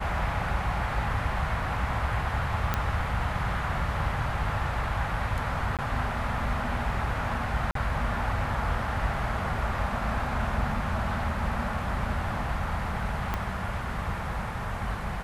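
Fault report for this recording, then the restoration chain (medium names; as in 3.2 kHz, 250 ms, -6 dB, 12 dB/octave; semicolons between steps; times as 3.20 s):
2.74 s: pop -11 dBFS
5.77–5.79 s: dropout 17 ms
7.71–7.75 s: dropout 43 ms
13.34 s: pop -15 dBFS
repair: de-click; interpolate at 5.77 s, 17 ms; interpolate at 7.71 s, 43 ms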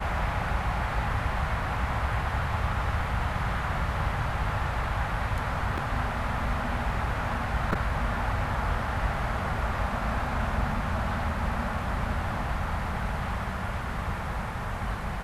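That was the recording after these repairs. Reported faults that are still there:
13.34 s: pop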